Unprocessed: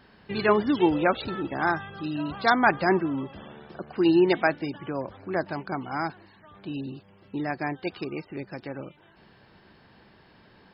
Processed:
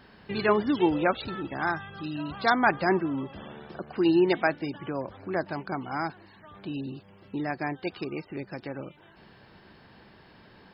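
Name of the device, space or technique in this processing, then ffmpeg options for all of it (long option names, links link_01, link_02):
parallel compression: -filter_complex "[0:a]asplit=2[link_01][link_02];[link_02]acompressor=threshold=-40dB:ratio=6,volume=-3.5dB[link_03];[link_01][link_03]amix=inputs=2:normalize=0,asettb=1/sr,asplit=3[link_04][link_05][link_06];[link_04]atrim=end=1.114[link_07];[link_05]atrim=start=1.11:end=2.42,asetpts=PTS-STARTPTS,afade=type=in:duration=0.004:curve=qsin,afade=type=out:start_time=1.306:duration=0.004:curve=qsin,equalizer=frequency=450:width=0.62:gain=-3.5[link_08];[link_06]atrim=start=2.416[link_09];[link_07][link_08]acrossfade=duration=0.004:curve1=hsin:curve2=qsin[link_10];[link_10][link_09]acrossfade=duration=0.004:curve1=qsin:curve2=hsin,volume=-2.5dB"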